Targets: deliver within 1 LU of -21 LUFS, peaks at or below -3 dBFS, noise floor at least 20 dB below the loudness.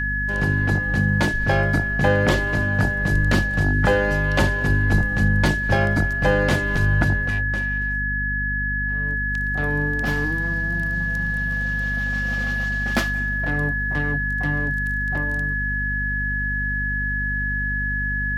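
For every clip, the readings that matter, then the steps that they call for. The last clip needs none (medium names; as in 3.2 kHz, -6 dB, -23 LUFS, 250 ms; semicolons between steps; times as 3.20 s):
hum 50 Hz; highest harmonic 250 Hz; hum level -24 dBFS; steady tone 1.7 kHz; tone level -23 dBFS; loudness -21.5 LUFS; peak level -4.5 dBFS; loudness target -21.0 LUFS
-> de-hum 50 Hz, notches 5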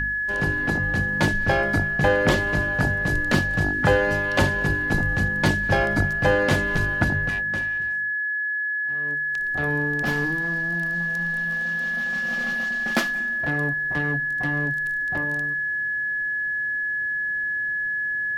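hum not found; steady tone 1.7 kHz; tone level -23 dBFS
-> band-stop 1.7 kHz, Q 30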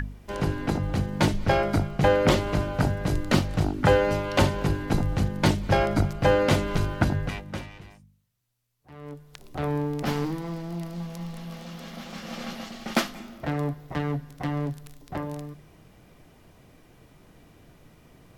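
steady tone not found; loudness -26.5 LUFS; peak level -5.5 dBFS; loudness target -21.0 LUFS
-> trim +5.5 dB; peak limiter -3 dBFS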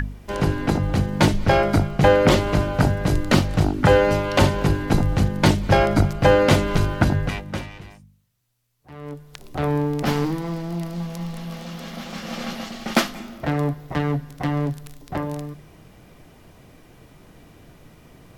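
loudness -21.0 LUFS; peak level -3.0 dBFS; noise floor -50 dBFS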